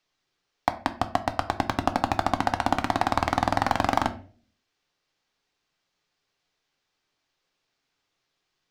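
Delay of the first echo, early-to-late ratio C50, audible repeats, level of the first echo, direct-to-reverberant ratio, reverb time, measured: none, 15.0 dB, none, none, 7.5 dB, 0.45 s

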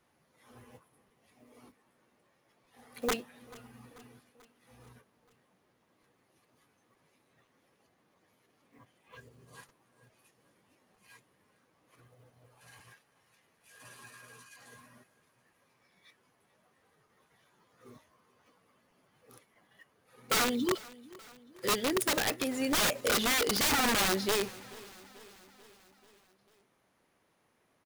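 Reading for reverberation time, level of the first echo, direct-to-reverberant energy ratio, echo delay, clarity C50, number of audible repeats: none, -21.5 dB, none, 0.438 s, none, 3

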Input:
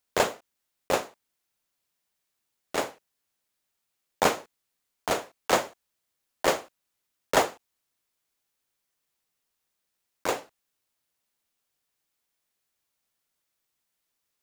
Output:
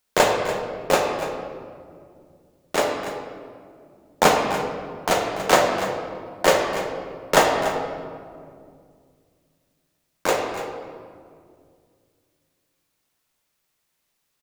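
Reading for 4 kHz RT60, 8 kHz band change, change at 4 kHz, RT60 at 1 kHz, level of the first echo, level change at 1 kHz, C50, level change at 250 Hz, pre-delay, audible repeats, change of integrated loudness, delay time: 1.1 s, +6.0 dB, +7.0 dB, 1.9 s, -12.0 dB, +8.5 dB, 3.0 dB, +8.5 dB, 3 ms, 1, +6.0 dB, 0.288 s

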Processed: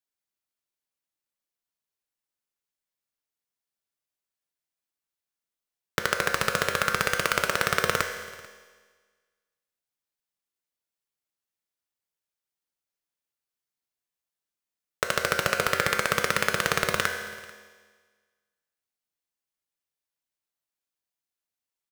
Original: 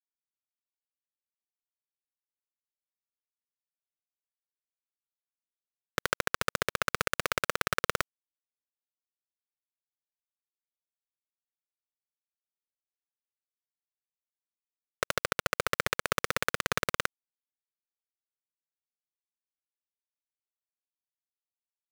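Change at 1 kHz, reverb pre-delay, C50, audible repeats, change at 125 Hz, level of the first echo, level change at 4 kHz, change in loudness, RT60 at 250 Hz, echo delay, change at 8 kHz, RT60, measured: +5.5 dB, 4 ms, 6.5 dB, 1, +5.0 dB, -23.5 dB, +5.0 dB, +5.5 dB, 1.6 s, 0.44 s, +5.5 dB, 1.5 s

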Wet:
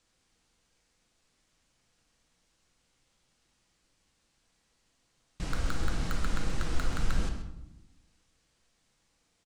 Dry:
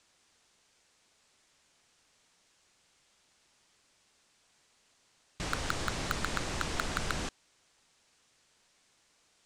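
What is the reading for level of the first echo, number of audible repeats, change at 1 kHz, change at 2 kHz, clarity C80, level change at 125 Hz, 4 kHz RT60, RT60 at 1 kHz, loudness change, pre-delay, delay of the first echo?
-13.0 dB, 1, -4.5 dB, -4.5 dB, 8.0 dB, +5.5 dB, 0.55 s, 0.85 s, -0.5 dB, 4 ms, 0.132 s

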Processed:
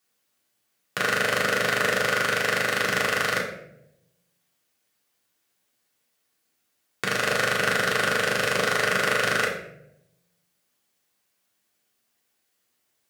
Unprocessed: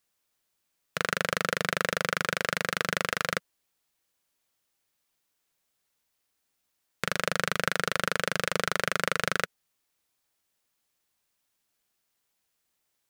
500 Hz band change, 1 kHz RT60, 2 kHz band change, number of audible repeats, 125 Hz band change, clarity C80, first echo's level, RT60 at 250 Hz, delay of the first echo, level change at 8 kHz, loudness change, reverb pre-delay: +6.5 dB, 0.65 s, +6.0 dB, none, +2.5 dB, 8.5 dB, none, 1.0 s, none, +4.0 dB, +5.5 dB, 3 ms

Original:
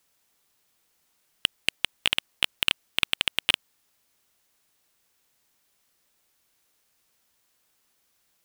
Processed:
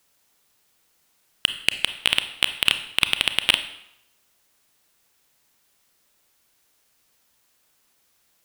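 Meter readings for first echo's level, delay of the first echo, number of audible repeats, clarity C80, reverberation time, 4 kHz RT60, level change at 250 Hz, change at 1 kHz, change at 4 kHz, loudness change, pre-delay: none, none, none, 14.0 dB, 0.80 s, 0.70 s, +4.5 dB, +4.5 dB, +4.5 dB, +4.5 dB, 27 ms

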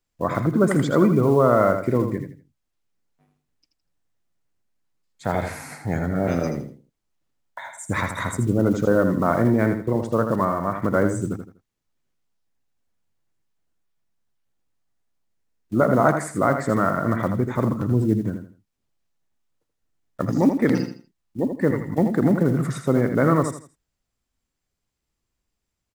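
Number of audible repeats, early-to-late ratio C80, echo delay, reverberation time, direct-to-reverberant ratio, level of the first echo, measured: 3, none, 81 ms, none, none, -7.5 dB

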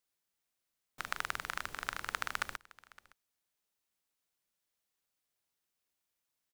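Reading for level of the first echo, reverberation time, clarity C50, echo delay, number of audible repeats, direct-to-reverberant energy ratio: -22.0 dB, none, none, 0.564 s, 1, none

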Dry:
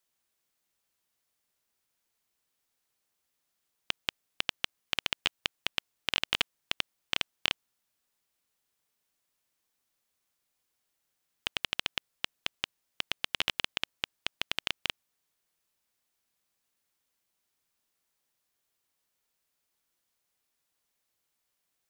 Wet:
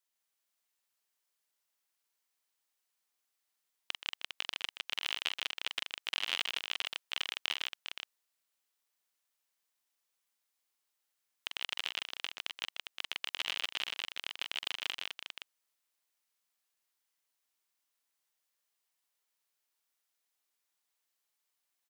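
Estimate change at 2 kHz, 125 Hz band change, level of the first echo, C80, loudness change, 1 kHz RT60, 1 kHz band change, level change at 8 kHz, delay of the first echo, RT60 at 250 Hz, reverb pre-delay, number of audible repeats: -3.5 dB, under -15 dB, -6.5 dB, none, -3.5 dB, none, -4.0 dB, -3.0 dB, 45 ms, none, none, 5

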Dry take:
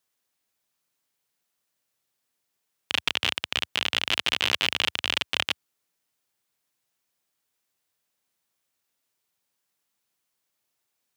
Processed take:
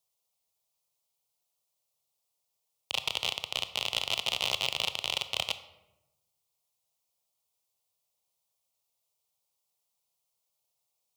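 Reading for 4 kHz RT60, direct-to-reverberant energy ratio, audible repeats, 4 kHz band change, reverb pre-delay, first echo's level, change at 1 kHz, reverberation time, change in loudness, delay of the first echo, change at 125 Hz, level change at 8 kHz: 0.60 s, 11.0 dB, none, -4.5 dB, 21 ms, none, -4.5 dB, 1.0 s, -5.5 dB, none, -4.0 dB, -2.0 dB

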